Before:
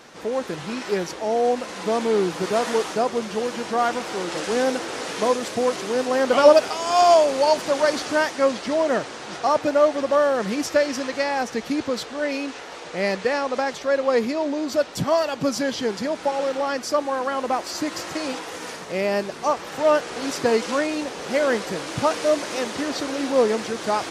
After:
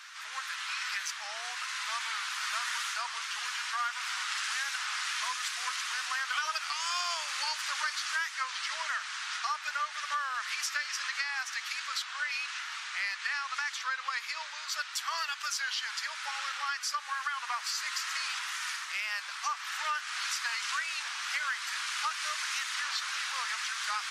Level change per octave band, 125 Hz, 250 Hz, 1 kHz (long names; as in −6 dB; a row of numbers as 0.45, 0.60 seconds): below −40 dB, below −40 dB, −11.0 dB